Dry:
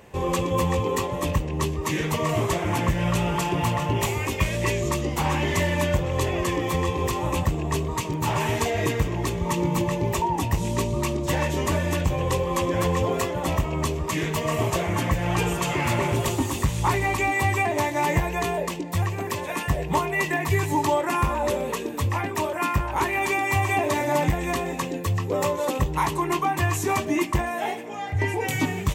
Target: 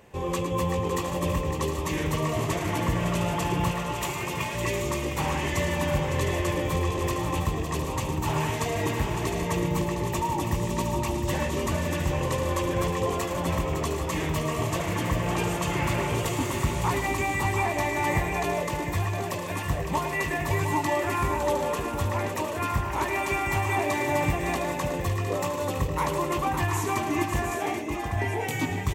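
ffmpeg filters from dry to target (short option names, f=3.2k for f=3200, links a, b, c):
-filter_complex "[0:a]asettb=1/sr,asplit=3[a][b][c];[a]atrim=end=3.714[d];[b]atrim=start=3.71:end=4.55,asetpts=PTS-STARTPTS,afade=t=in:d=0.004:c=qsin,afade=t=out:st=0.836:d=0.004:c=qsin,highpass=f=500:p=1[e];[c]atrim=start=4.546[f];[d][e]acrossfade=d=0.004:c1=hsin:c2=qsin[g];[g][f]acrossfade=d=0.004:c1=qsin:c2=hsin,aecho=1:1:109|559|710|783:0.316|0.398|0.398|0.355,volume=-4.5dB"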